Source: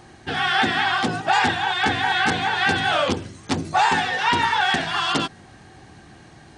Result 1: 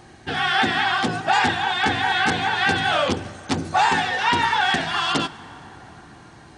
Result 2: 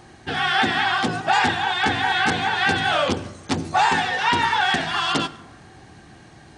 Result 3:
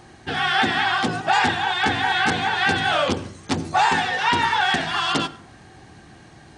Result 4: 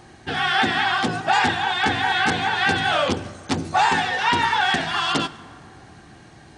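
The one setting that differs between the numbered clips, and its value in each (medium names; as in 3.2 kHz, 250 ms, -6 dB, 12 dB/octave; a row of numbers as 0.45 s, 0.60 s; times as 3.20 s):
plate-style reverb, RT60: 5 s, 1.1 s, 0.53 s, 2.3 s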